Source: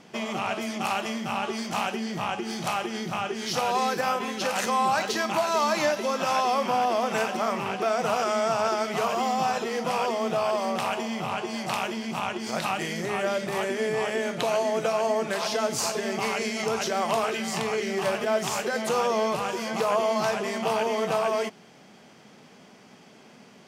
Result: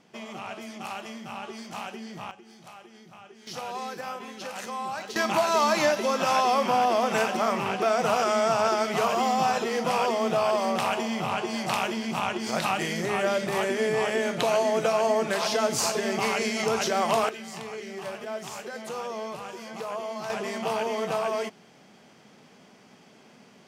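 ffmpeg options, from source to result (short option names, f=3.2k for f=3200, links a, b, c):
-af "asetnsamples=n=441:p=0,asendcmd='2.31 volume volume -19dB;3.47 volume volume -9.5dB;5.16 volume volume 1.5dB;17.29 volume volume -9.5dB;20.3 volume volume -2.5dB',volume=-8.5dB"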